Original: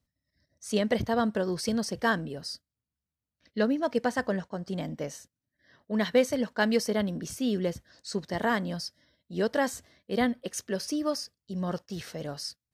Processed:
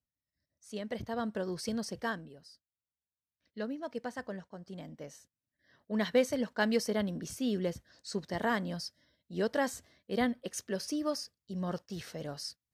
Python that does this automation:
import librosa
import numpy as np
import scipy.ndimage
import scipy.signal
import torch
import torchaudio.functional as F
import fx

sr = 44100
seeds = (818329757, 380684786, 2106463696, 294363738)

y = fx.gain(x, sr, db=fx.line((0.68, -14.0), (1.43, -6.5), (1.97, -6.5), (2.51, -19.0), (3.66, -11.5), (4.95, -11.5), (5.95, -4.0)))